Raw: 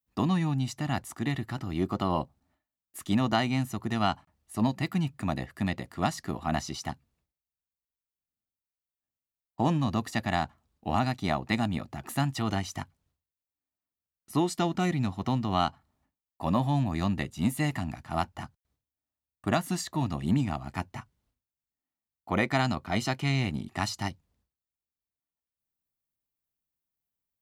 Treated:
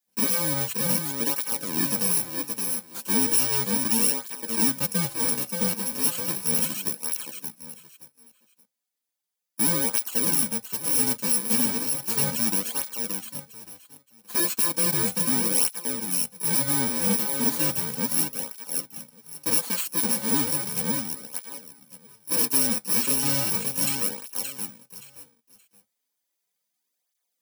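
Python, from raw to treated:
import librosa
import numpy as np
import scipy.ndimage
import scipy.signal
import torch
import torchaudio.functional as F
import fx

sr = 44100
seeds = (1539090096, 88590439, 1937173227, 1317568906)

y = fx.bit_reversed(x, sr, seeds[0], block=64)
y = fx.low_shelf(y, sr, hz=230.0, db=-4.5)
y = y + 0.34 * np.pad(y, (int(4.0 * sr / 1000.0), 0))[:len(y)]
y = fx.echo_feedback(y, sr, ms=575, feedback_pct=23, wet_db=-6)
y = np.clip(y, -10.0 ** (-23.5 / 20.0), 10.0 ** (-23.5 / 20.0))
y = scipy.signal.sosfilt(scipy.signal.butter(4, 130.0, 'highpass', fs=sr, output='sos'), y)
y = fx.high_shelf(y, sr, hz=4000.0, db=5.5)
y = fx.flanger_cancel(y, sr, hz=0.35, depth_ms=7.4)
y = y * librosa.db_to_amplitude(5.5)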